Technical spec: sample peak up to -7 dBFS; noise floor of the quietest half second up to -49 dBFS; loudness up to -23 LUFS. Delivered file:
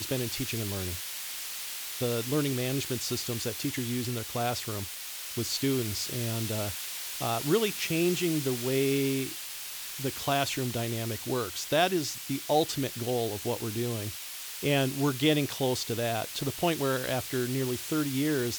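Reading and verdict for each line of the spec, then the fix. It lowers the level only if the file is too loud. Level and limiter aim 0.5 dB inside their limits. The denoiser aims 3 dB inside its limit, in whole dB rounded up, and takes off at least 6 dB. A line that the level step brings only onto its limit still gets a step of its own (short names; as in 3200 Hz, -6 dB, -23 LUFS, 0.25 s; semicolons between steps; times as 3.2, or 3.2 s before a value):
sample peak -12.0 dBFS: OK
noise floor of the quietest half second -40 dBFS: fail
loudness -30.0 LUFS: OK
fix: denoiser 12 dB, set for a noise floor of -40 dBFS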